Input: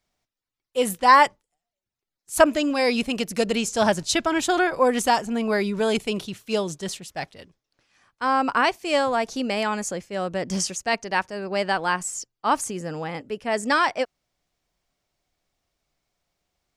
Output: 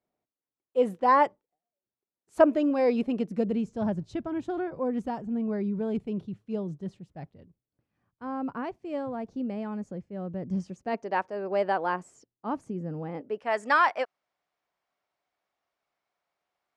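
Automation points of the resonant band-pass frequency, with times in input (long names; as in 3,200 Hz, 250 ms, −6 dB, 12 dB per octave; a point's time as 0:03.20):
resonant band-pass, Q 0.88
0:02.93 390 Hz
0:03.74 130 Hz
0:10.62 130 Hz
0:11.12 530 Hz
0:11.83 530 Hz
0:12.48 180 Hz
0:12.98 180 Hz
0:13.51 1,100 Hz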